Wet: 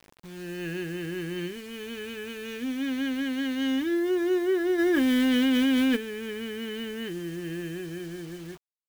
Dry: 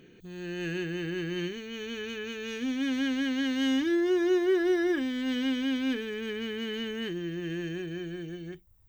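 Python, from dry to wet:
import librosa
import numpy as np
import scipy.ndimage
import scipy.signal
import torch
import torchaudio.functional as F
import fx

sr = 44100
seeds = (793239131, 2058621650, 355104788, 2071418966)

y = fx.high_shelf(x, sr, hz=7000.0, db=-11.5)
y = fx.quant_dither(y, sr, seeds[0], bits=8, dither='none')
y = fx.env_flatten(y, sr, amount_pct=100, at=(4.78, 5.95), fade=0.02)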